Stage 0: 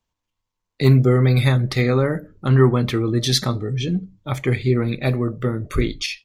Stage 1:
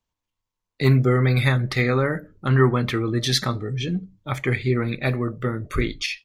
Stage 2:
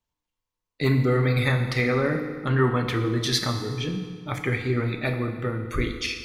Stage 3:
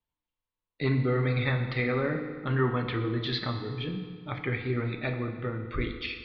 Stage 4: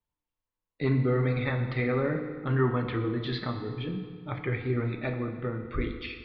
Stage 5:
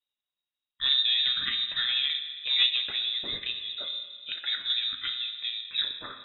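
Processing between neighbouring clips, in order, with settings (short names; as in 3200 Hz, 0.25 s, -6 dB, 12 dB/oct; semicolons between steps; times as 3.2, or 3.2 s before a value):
dynamic EQ 1700 Hz, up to +7 dB, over -40 dBFS, Q 1; gain -3.5 dB
FDN reverb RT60 1.8 s, low-frequency decay 0.95×, high-frequency decay 0.8×, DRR 4.5 dB; gain -3 dB
steep low-pass 4200 Hz 48 dB/oct; gain -5 dB
high shelf 2500 Hz -9.5 dB; flange 0.45 Hz, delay 1.8 ms, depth 3 ms, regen -82%; gain +5.5 dB
added harmonics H 3 -16 dB, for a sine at -13.5 dBFS; inverted band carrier 3800 Hz; gain +3.5 dB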